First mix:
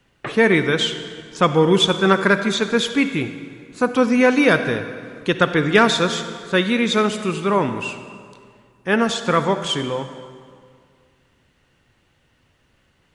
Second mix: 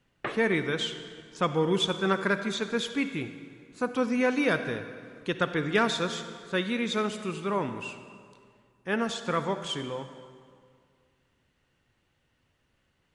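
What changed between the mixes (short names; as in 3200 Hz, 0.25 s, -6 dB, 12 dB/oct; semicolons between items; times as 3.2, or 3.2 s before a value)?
speech -10.5 dB; background -3.0 dB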